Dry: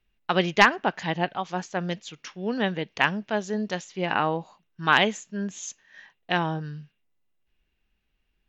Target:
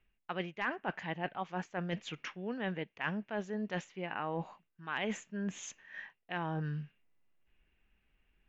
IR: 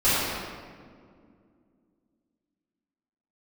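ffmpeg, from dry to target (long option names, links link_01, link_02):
-af "highshelf=frequency=3300:width_type=q:width=1.5:gain=-9,areverse,acompressor=threshold=-35dB:ratio=8,areverse,volume=1dB"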